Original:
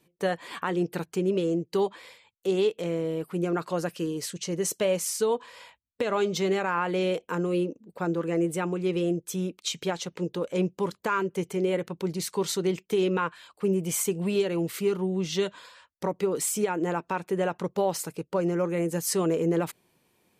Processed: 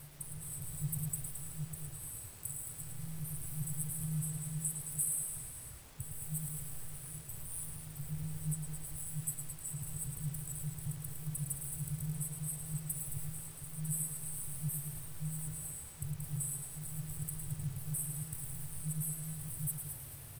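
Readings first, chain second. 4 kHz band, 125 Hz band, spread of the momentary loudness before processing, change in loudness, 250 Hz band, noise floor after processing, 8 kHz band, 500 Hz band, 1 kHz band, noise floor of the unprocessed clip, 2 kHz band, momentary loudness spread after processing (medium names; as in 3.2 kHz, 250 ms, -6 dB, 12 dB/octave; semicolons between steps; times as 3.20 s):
-20.0 dB, -4.5 dB, 6 LU, -11.0 dB, -17.0 dB, -49 dBFS, -2.5 dB, -36.5 dB, -28.0 dB, -72 dBFS, -22.5 dB, 7 LU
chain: companding laws mixed up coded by mu; FFT band-reject 160–7800 Hz; reverse; upward compressor, threshold -56 dBFS; reverse; transient shaper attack +2 dB, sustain +6 dB; compression 6:1, threshold -49 dBFS, peak gain reduction 21.5 dB; rotary cabinet horn 0.75 Hz; added noise pink -74 dBFS; on a send: delay 109 ms -7.5 dB; on the sum: bit-crushed delay 218 ms, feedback 35%, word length 11-bit, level -8 dB; trim +15 dB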